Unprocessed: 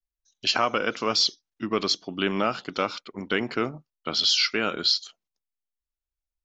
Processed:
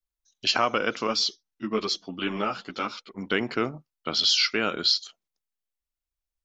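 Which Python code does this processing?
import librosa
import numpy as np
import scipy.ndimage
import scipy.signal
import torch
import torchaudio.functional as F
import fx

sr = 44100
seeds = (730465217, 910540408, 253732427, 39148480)

y = fx.ensemble(x, sr, at=(1.07, 3.26))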